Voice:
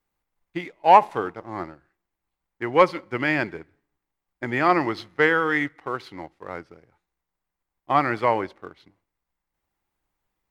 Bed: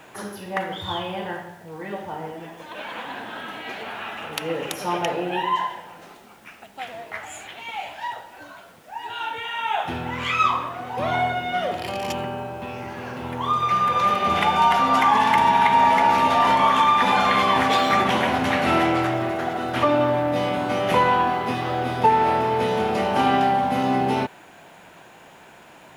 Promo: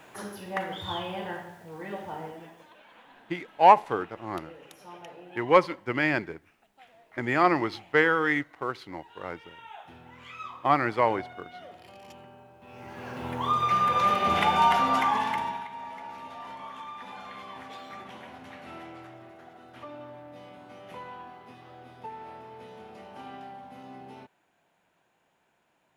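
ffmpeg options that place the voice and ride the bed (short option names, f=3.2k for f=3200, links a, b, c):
-filter_complex "[0:a]adelay=2750,volume=-2.5dB[a];[1:a]volume=12.5dB,afade=t=out:st=2.18:d=0.61:silence=0.158489,afade=t=in:st=12.61:d=0.67:silence=0.133352,afade=t=out:st=14.67:d=1:silence=0.0944061[b];[a][b]amix=inputs=2:normalize=0"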